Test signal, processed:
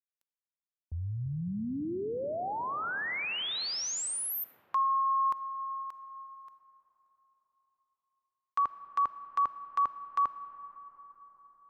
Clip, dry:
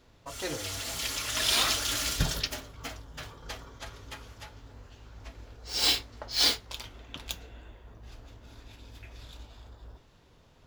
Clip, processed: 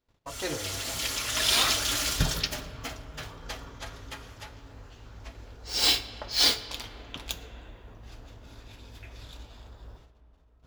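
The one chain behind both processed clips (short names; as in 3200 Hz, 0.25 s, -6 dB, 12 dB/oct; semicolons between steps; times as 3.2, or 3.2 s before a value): gate -56 dBFS, range -24 dB; digital reverb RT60 4.9 s, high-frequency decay 0.35×, pre-delay 5 ms, DRR 12.5 dB; gain +2 dB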